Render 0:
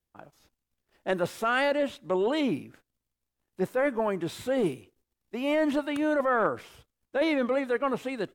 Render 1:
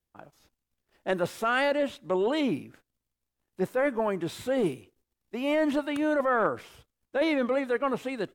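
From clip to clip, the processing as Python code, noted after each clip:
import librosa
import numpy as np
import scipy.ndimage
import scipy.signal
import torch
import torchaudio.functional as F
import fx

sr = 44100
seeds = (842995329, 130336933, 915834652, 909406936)

y = x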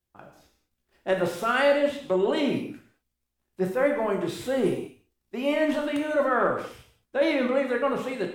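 y = fx.rev_gated(x, sr, seeds[0], gate_ms=240, shape='falling', drr_db=1.5)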